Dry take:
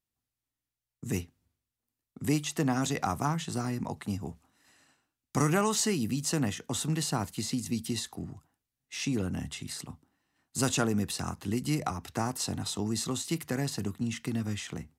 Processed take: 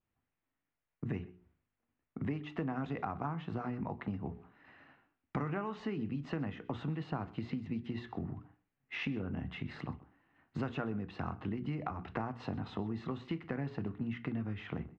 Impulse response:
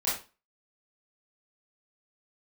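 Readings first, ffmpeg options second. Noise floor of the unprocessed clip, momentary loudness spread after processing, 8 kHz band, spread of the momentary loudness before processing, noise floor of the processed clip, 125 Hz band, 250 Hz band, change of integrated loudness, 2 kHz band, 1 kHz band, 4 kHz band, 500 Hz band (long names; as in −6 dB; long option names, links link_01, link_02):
below −85 dBFS, 7 LU, below −35 dB, 10 LU, below −85 dBFS, −6.0 dB, −6.5 dB, −8.0 dB, −6.5 dB, −7.0 dB, −16.0 dB, −7.0 dB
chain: -filter_complex "[0:a]lowpass=frequency=2400:width=0.5412,lowpass=frequency=2400:width=1.3066,bandreject=frequency=60:width_type=h:width=6,bandreject=frequency=120:width_type=h:width=6,bandreject=frequency=180:width_type=h:width=6,bandreject=frequency=240:width_type=h:width=6,bandreject=frequency=300:width_type=h:width=6,bandreject=frequency=360:width_type=h:width=6,bandreject=frequency=420:width_type=h:width=6,adynamicequalizer=threshold=0.00158:dfrequency=1900:dqfactor=3.1:tfrequency=1900:tqfactor=3.1:attack=5:release=100:ratio=0.375:range=2.5:mode=cutabove:tftype=bell,acompressor=threshold=-42dB:ratio=5,aecho=1:1:127:0.1,asplit=2[link_01][link_02];[1:a]atrim=start_sample=2205,asetrate=66150,aresample=44100[link_03];[link_02][link_03]afir=irnorm=-1:irlink=0,volume=-19.5dB[link_04];[link_01][link_04]amix=inputs=2:normalize=0,volume=6dB"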